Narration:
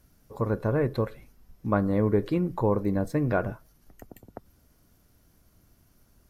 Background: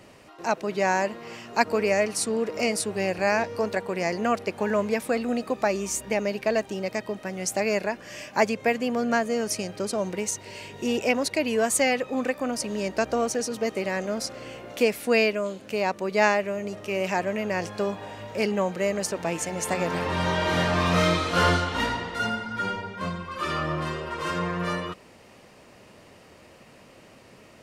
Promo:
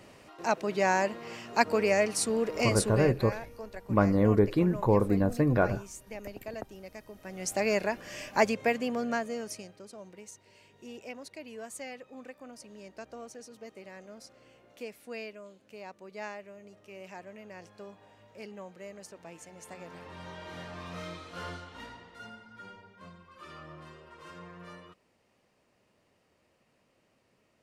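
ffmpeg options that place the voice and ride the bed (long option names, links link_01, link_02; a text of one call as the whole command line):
ffmpeg -i stem1.wav -i stem2.wav -filter_complex "[0:a]adelay=2250,volume=0.5dB[link_01];[1:a]volume=11.5dB,afade=type=out:start_time=2.93:duration=0.22:silence=0.199526,afade=type=in:start_time=7.14:duration=0.53:silence=0.199526,afade=type=out:start_time=8.47:duration=1.35:silence=0.141254[link_02];[link_01][link_02]amix=inputs=2:normalize=0" out.wav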